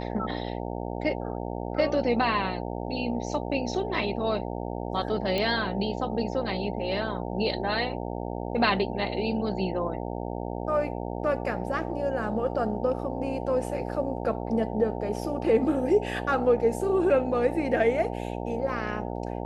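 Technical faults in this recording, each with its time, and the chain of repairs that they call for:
mains buzz 60 Hz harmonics 15 −33 dBFS
0:05.38: click −15 dBFS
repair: click removal
hum removal 60 Hz, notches 15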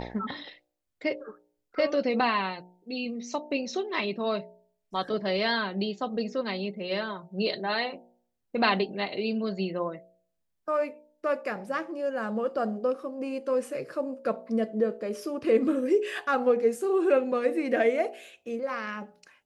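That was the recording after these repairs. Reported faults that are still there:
none of them is left

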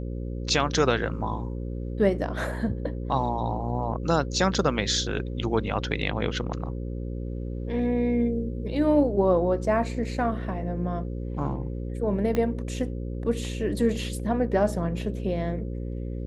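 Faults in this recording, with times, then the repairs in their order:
mains buzz 60 Hz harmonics 9 −32 dBFS
0:12.35: click −14 dBFS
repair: click removal
hum removal 60 Hz, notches 9

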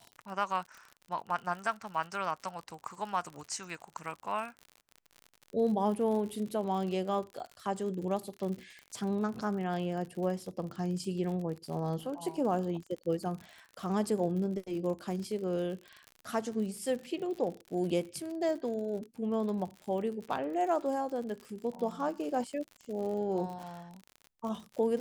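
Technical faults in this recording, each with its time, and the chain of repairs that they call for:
surface crackle 59 per second −39 dBFS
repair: click removal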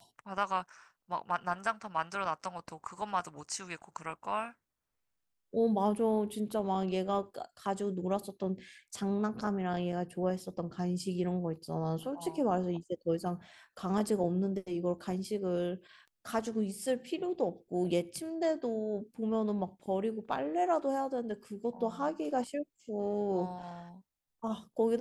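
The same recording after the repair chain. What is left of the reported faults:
none of them is left

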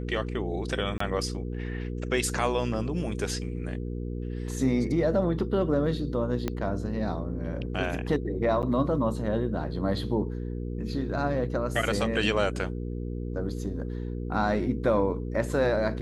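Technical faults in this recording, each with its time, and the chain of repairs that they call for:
mains hum 60 Hz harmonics 8 −33 dBFS
0:00.98–0:01.00: drop-out 24 ms
0:06.48: click −15 dBFS
0:08.62–0:08.63: drop-out 8.6 ms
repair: click removal
hum removal 60 Hz, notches 8
repair the gap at 0:00.98, 24 ms
repair the gap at 0:08.62, 8.6 ms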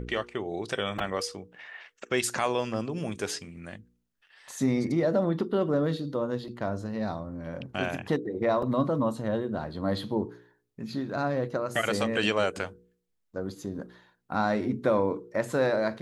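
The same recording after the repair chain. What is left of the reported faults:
0:06.48: click

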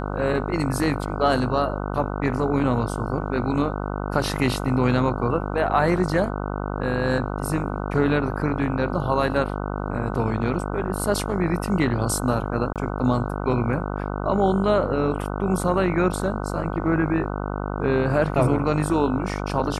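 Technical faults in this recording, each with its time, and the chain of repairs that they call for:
mains buzz 50 Hz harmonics 30 −28 dBFS
0:12.73–0:12.76: drop-out 27 ms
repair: hum removal 50 Hz, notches 30
repair the gap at 0:12.73, 27 ms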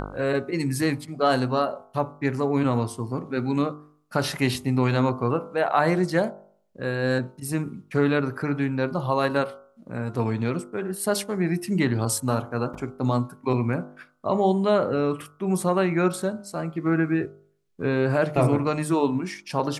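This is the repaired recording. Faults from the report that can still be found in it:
none of them is left

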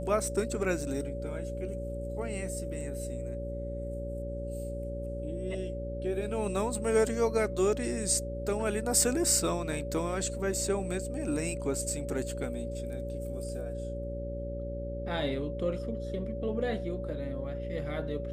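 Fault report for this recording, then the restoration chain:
mains buzz 60 Hz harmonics 9 −38 dBFS
whistle 570 Hz −38 dBFS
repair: hum removal 60 Hz, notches 9
notch filter 570 Hz, Q 30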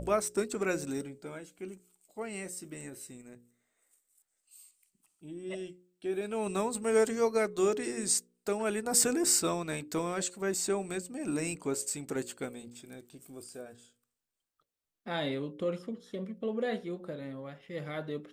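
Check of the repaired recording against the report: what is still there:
none of them is left

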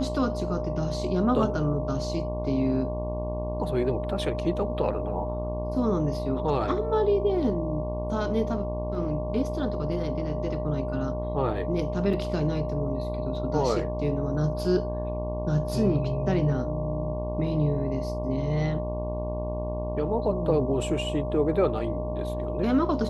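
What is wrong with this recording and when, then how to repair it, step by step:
mains buzz 60 Hz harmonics 19 −32 dBFS
whistle 610 Hz −32 dBFS
0:12.13: drop-out 4 ms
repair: hum removal 60 Hz, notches 19
notch filter 610 Hz, Q 30
repair the gap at 0:12.13, 4 ms

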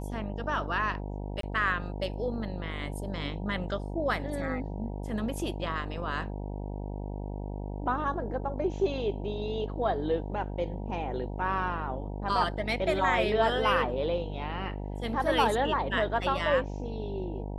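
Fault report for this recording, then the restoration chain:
mains buzz 50 Hz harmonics 19 −36 dBFS
0:01.41–0:01.43: drop-out 23 ms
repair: hum removal 50 Hz, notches 19
repair the gap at 0:01.41, 23 ms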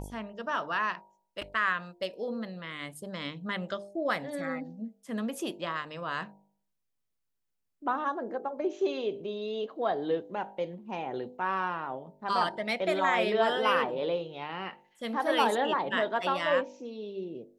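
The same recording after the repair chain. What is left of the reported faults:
none of them is left

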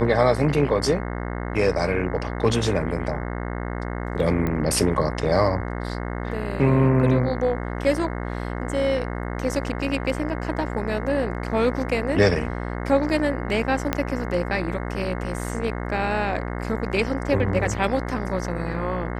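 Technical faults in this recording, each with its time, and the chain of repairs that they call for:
mains buzz 60 Hz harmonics 36 −29 dBFS
0:04.47: click −14 dBFS
0:13.93: click −7 dBFS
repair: click removal
hum removal 60 Hz, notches 36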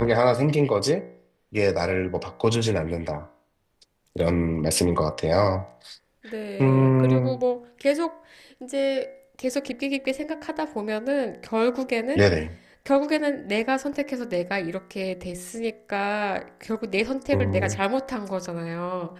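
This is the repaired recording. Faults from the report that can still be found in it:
0:13.93: click

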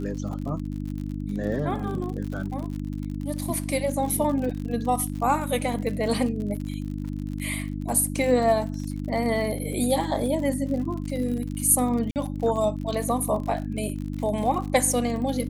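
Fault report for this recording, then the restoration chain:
surface crackle 56 per second −32 dBFS
mains hum 50 Hz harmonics 6 −31 dBFS
0:12.11–0:12.16: drop-out 48 ms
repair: click removal
hum removal 50 Hz, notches 6
repair the gap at 0:12.11, 48 ms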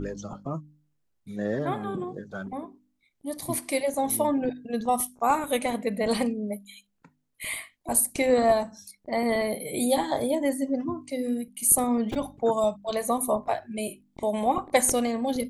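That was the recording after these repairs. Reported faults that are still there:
none of them is left

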